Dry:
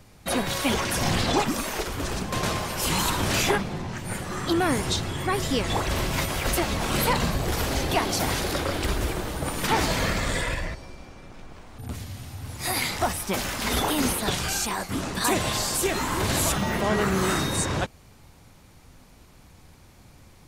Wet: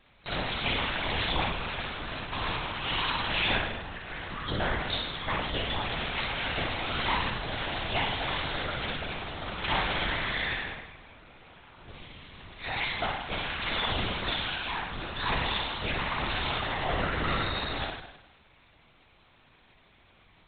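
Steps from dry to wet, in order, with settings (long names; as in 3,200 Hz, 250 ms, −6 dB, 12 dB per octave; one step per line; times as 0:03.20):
spectral tilt +3 dB per octave
flutter between parallel walls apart 9.1 metres, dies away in 0.91 s
linear-prediction vocoder at 8 kHz whisper
level −6 dB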